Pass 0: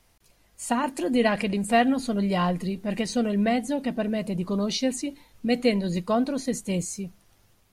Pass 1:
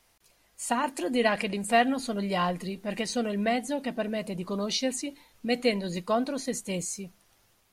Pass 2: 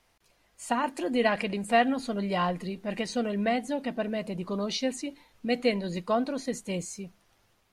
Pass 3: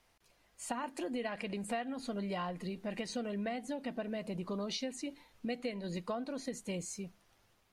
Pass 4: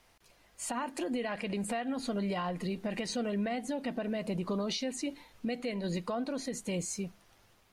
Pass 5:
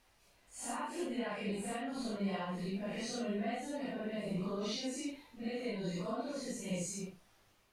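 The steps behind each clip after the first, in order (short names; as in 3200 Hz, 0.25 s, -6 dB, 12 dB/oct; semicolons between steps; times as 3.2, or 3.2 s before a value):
low shelf 290 Hz -9.5 dB
high shelf 6100 Hz -10 dB
compressor 6:1, threshold -32 dBFS, peak gain reduction 14 dB; gain -3 dB
limiter -32 dBFS, peak gain reduction 6.5 dB; gain +6 dB
phase scrambler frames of 0.2 s; gain -4 dB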